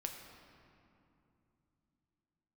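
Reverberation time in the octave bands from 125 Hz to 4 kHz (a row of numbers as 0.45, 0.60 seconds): 4.1, 4.1, 2.9, 2.7, 2.2, 1.6 seconds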